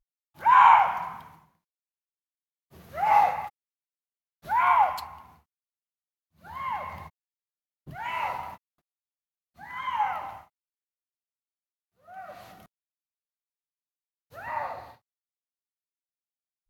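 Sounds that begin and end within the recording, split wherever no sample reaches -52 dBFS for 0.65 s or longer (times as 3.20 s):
2.72–3.50 s
4.43–5.39 s
6.40–7.09 s
7.87–8.57 s
9.57–10.46 s
12.06–12.66 s
14.32–14.96 s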